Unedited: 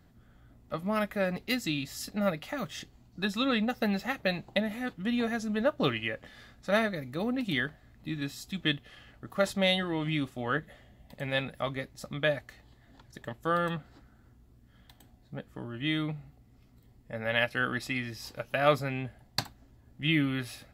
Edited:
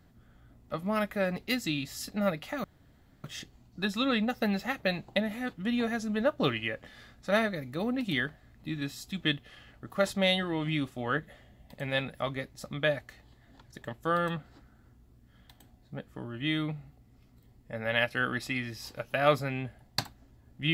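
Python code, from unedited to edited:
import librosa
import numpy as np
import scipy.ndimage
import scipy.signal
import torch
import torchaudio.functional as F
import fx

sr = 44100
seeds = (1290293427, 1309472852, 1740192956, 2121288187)

y = fx.edit(x, sr, fx.insert_room_tone(at_s=2.64, length_s=0.6), tone=tone)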